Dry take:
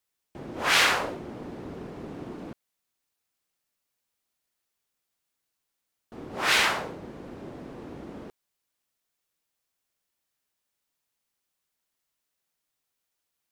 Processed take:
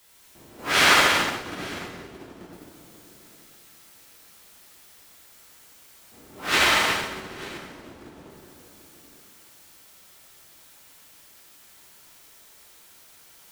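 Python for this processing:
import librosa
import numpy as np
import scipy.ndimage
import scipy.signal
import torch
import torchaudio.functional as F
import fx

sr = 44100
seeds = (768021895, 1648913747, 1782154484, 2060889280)

p1 = x + 0.5 * 10.0 ** (-33.0 / 20.0) * np.sign(x)
p2 = p1 + fx.echo_multitap(p1, sr, ms=(143, 230, 365, 783, 896), db=(-6.5, -6.0, -9.0, -17.0, -10.0), dry=0)
p3 = fx.rev_plate(p2, sr, seeds[0], rt60_s=2.1, hf_ratio=0.85, predelay_ms=0, drr_db=-4.0)
y = fx.upward_expand(p3, sr, threshold_db=-27.0, expansion=2.5)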